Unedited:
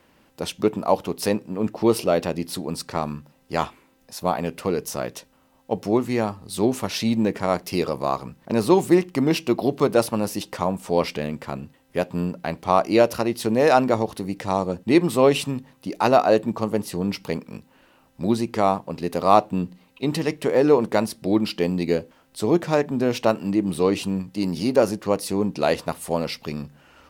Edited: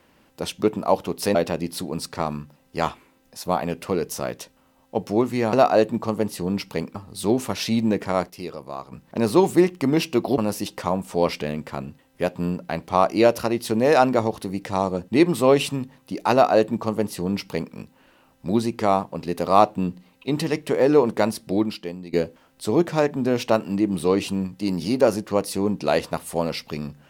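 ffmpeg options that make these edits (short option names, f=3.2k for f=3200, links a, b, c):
-filter_complex "[0:a]asplit=8[a][b][c][d][e][f][g][h];[a]atrim=end=1.352[i];[b]atrim=start=2.108:end=6.292[j];[c]atrim=start=16.068:end=17.492[k];[d]atrim=start=6.288:end=7.64,asetpts=PTS-STARTPTS,afade=t=out:st=0.972:d=0.38:c=log:silence=0.316228[l];[e]atrim=start=7.64:end=8.26,asetpts=PTS-STARTPTS,volume=-10dB[m];[f]atrim=start=8.26:end=9.722,asetpts=PTS-STARTPTS,afade=t=in:d=0.38:c=log:silence=0.316228[n];[g]atrim=start=10.128:end=21.88,asetpts=PTS-STARTPTS,afade=t=out:st=11.152:d=0.6:c=qua:silence=0.199526[o];[h]atrim=start=21.88,asetpts=PTS-STARTPTS,afade=t=in:d=0.004:c=hsin:silence=0.199526[p];[i][j]acrossfade=d=0.004:c1=hsin:c2=hsin[q];[q][k]acrossfade=d=0.004:c1=hsin:c2=hsin[r];[l][m][n]concat=n=3:v=0:a=1[s];[r][s]acrossfade=d=0.004:c1=hsin:c2=hsin[t];[o][p]concat=n=2:v=0:a=1[u];[t][u]acrossfade=d=0.004:c1=hsin:c2=hsin"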